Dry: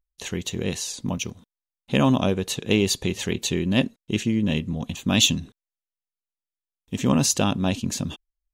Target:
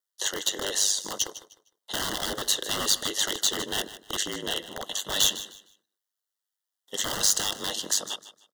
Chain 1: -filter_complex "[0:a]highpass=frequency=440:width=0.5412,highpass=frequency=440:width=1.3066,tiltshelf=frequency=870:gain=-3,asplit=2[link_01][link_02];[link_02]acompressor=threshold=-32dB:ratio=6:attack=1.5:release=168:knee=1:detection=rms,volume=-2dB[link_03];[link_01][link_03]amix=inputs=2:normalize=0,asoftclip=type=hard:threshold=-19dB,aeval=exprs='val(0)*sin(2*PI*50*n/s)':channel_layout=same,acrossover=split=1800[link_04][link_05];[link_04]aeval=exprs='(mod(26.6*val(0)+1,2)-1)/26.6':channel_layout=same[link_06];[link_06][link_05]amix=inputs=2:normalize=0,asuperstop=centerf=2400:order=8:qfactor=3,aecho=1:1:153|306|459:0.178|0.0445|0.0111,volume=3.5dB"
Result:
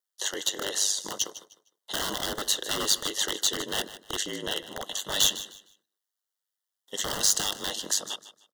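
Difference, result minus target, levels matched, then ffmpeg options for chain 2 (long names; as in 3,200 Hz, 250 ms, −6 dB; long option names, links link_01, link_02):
downward compressor: peak gain reduction +8 dB
-filter_complex "[0:a]highpass=frequency=440:width=0.5412,highpass=frequency=440:width=1.3066,tiltshelf=frequency=870:gain=-3,asplit=2[link_01][link_02];[link_02]acompressor=threshold=-22.5dB:ratio=6:attack=1.5:release=168:knee=1:detection=rms,volume=-2dB[link_03];[link_01][link_03]amix=inputs=2:normalize=0,asoftclip=type=hard:threshold=-19dB,aeval=exprs='val(0)*sin(2*PI*50*n/s)':channel_layout=same,acrossover=split=1800[link_04][link_05];[link_04]aeval=exprs='(mod(26.6*val(0)+1,2)-1)/26.6':channel_layout=same[link_06];[link_06][link_05]amix=inputs=2:normalize=0,asuperstop=centerf=2400:order=8:qfactor=3,aecho=1:1:153|306|459:0.178|0.0445|0.0111,volume=3.5dB"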